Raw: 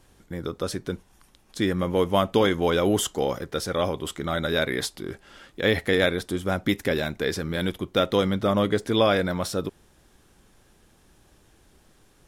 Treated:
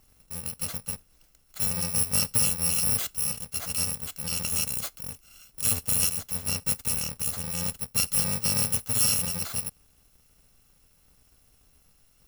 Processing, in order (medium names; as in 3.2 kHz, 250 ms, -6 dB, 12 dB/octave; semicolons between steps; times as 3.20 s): bit-reversed sample order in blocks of 128 samples; trim -3.5 dB